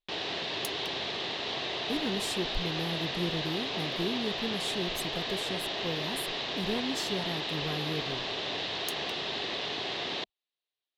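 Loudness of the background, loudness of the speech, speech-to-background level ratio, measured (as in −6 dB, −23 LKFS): −32.5 LKFS, −37.0 LKFS, −4.5 dB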